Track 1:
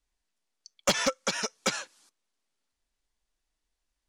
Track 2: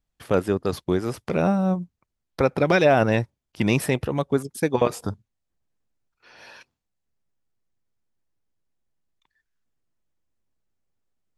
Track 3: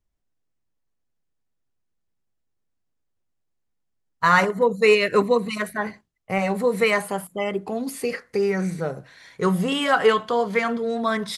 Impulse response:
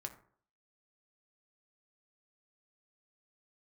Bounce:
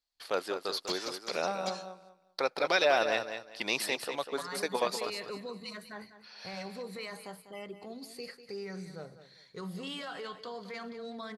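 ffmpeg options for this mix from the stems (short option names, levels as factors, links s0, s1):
-filter_complex "[0:a]volume=0.126[s0];[1:a]highpass=580,volume=0.501,asplit=2[s1][s2];[s2]volume=0.376[s3];[2:a]alimiter=limit=0.15:level=0:latency=1:release=20,adelay=150,volume=0.133,asplit=2[s4][s5];[s5]volume=0.237[s6];[s3][s6]amix=inputs=2:normalize=0,aecho=0:1:197|394|591|788:1|0.24|0.0576|0.0138[s7];[s0][s1][s4][s7]amix=inputs=4:normalize=0,equalizer=f=4400:t=o:w=0.51:g=15"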